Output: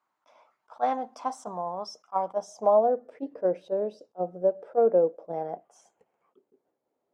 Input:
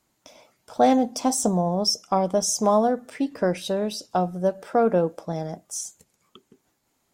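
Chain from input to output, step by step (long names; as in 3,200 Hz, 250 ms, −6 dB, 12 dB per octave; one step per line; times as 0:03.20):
gain on a spectral selection 0:05.34–0:06.32, 650–3,300 Hz +10 dB
band-pass filter sweep 1,100 Hz → 500 Hz, 0:02.06–0:03.06
level that may rise only so fast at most 580 dB per second
level +1.5 dB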